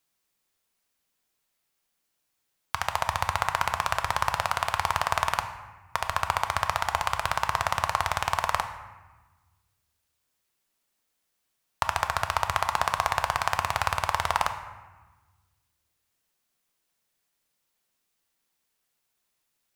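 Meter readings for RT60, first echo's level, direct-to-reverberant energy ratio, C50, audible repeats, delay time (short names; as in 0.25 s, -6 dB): 1.2 s, none, 7.0 dB, 9.5 dB, none, none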